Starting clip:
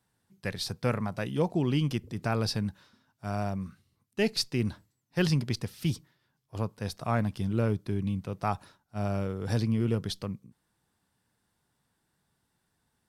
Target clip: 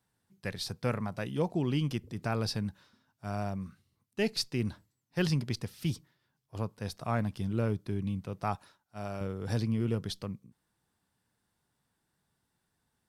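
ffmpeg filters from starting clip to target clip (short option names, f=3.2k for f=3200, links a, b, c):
-filter_complex "[0:a]asettb=1/sr,asplit=3[a][b][c];[a]atrim=end=8.554[d];[b]atrim=start=8.55:end=9.21,asetpts=PTS-STARTPTS,afade=t=in:d=0.004:c=qsin,afade=t=out:st=0.656:d=0.004:c=qsin,lowshelf=f=360:g=-8.5[e];[c]atrim=start=9.206[f];[d][e]acrossfade=d=0.004:c1=hsin:c2=qsin[g];[g][f]acrossfade=d=0.004:c1=qsin:c2=hsin,volume=-3dB"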